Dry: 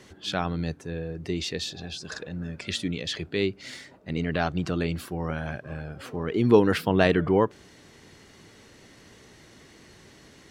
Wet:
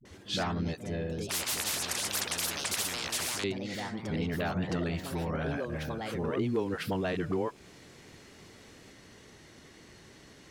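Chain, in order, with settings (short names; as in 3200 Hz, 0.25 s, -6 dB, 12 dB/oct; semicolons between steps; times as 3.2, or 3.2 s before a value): compressor 6:1, threshold -25 dBFS, peak gain reduction 13 dB; dispersion highs, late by 53 ms, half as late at 340 Hz; echoes that change speed 86 ms, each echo +3 st, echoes 2, each echo -6 dB; 1.29–3.44 spectral compressor 10:1; gain -2 dB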